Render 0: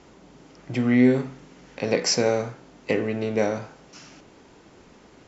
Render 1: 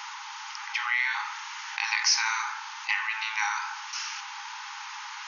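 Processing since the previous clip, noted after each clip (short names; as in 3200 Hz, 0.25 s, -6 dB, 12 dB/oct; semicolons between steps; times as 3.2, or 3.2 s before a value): FFT band-pass 800–6800 Hz; fast leveller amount 50%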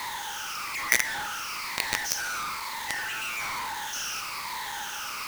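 moving spectral ripple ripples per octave 0.98, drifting -1.1 Hz, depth 15 dB; companded quantiser 2-bit; gain -6.5 dB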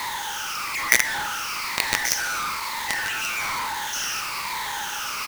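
echo 1.131 s -12 dB; gain +5 dB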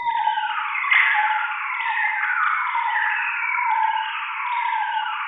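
sine-wave speech; shoebox room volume 2600 m³, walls mixed, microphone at 4 m; gain -1.5 dB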